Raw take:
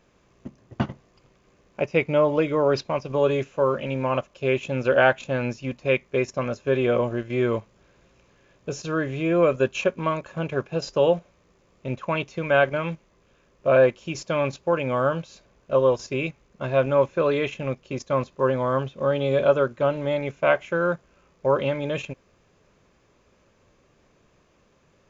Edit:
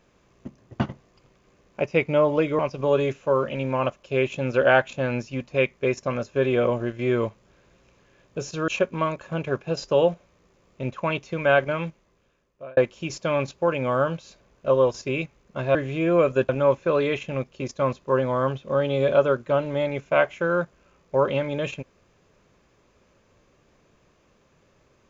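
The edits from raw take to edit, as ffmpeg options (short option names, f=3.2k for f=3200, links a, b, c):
-filter_complex "[0:a]asplit=6[a][b][c][d][e][f];[a]atrim=end=2.592[g];[b]atrim=start=2.898:end=8.992[h];[c]atrim=start=9.728:end=13.82,asetpts=PTS-STARTPTS,afade=t=out:st=3.092:d=1[i];[d]atrim=start=13.82:end=16.802,asetpts=PTS-STARTPTS,afade=t=in:d=0.004:c=hsin[j];[e]atrim=start=8.988:end=9.732[k];[f]atrim=start=16.798[l];[g][h]acrossfade=d=0.004:c1=hsin:c2=hsin[m];[i][j]concat=n=2:v=0:a=1[n];[m][n]acrossfade=d=0.004:c1=hsin:c2=hsin[o];[o][k]acrossfade=d=0.004:c1=hsin:c2=hsin[p];[p][l]acrossfade=d=0.004:c1=hsin:c2=hsin"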